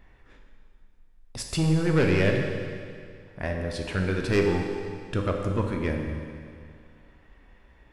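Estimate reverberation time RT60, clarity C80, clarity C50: 2.2 s, 4.5 dB, 3.0 dB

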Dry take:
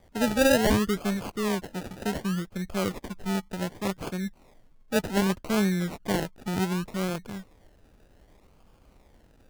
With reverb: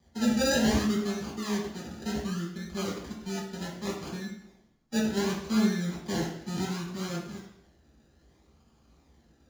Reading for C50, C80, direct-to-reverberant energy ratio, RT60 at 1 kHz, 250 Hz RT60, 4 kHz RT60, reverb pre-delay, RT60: 4.0 dB, 7.0 dB, -5.5 dB, 0.70 s, 0.75 s, 0.70 s, 3 ms, 0.70 s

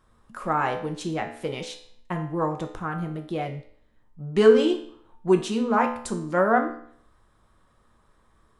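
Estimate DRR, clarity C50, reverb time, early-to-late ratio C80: 3.5 dB, 9.5 dB, 0.60 s, 13.0 dB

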